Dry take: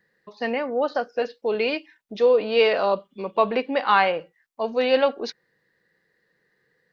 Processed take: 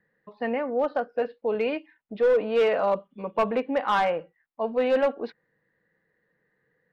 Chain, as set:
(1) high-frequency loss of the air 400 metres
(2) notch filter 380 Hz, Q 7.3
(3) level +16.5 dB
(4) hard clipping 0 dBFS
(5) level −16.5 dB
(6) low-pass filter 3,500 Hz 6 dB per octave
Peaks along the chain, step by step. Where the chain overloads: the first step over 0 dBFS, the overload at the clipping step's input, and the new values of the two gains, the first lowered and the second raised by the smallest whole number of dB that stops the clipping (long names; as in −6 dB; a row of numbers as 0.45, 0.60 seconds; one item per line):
−7.5, −8.0, +8.5, 0.0, −16.5, −16.5 dBFS
step 3, 8.5 dB
step 3 +7.5 dB, step 5 −7.5 dB